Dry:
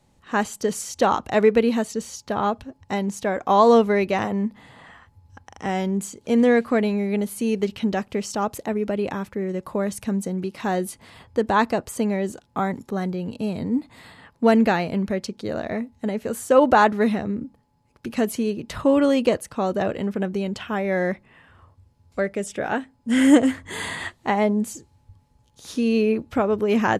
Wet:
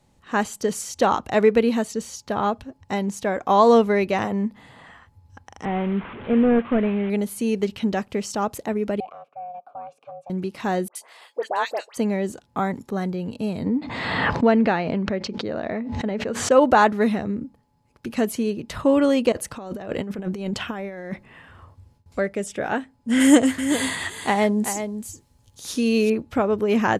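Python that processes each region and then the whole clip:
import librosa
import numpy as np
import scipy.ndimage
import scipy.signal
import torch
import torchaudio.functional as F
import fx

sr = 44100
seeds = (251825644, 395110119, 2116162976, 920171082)

y = fx.chain(x, sr, fx.delta_mod(bps=16000, step_db=-31.0),
    fx.air_absorb(metres=52.0), at=(5.65, 7.1))
y = fx.chain(y, sr, fx.notch(hz=2200.0, q=15.0),
    fx.ring_mod(carrier_hz=350.0),
    fx.vowel_filter(vowel='a'), at=(9.0, 10.3))
y = fx.chain(y, sr, fx.highpass(hz=500.0, slope=24),
    fx.dynamic_eq(hz=1200.0, q=1.1, threshold_db=-31.0, ratio=4.0, max_db=-6),
    fx.dispersion(late='highs', ms=75.0, hz=1700.0), at=(10.88, 11.97))
y = fx.chain(y, sr, fx.highpass(hz=130.0, slope=6),
    fx.air_absorb(metres=170.0),
    fx.pre_swell(db_per_s=31.0), at=(13.66, 16.51))
y = fx.chain(y, sr, fx.gate_hold(open_db=-49.0, close_db=-57.0, hold_ms=71.0, range_db=-21, attack_ms=1.4, release_ms=100.0),
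    fx.over_compress(threshold_db=-28.0, ratio=-0.5), at=(19.32, 22.19))
y = fx.chain(y, sr, fx.high_shelf(hz=3700.0, db=9.0),
    fx.echo_single(ms=382, db=-9.0), at=(23.2, 26.1))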